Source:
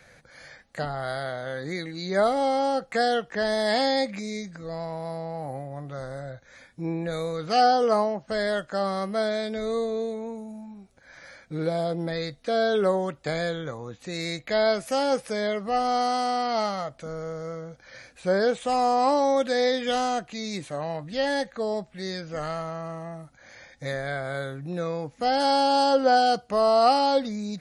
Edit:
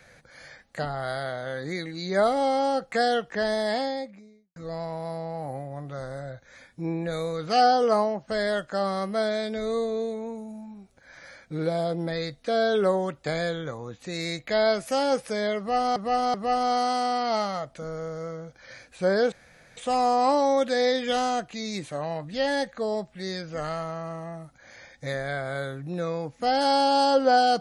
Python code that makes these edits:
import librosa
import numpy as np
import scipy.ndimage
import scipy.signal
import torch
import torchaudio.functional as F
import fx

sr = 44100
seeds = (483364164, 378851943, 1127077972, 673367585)

y = fx.studio_fade_out(x, sr, start_s=3.32, length_s=1.24)
y = fx.edit(y, sr, fx.repeat(start_s=15.58, length_s=0.38, count=3),
    fx.insert_room_tone(at_s=18.56, length_s=0.45), tone=tone)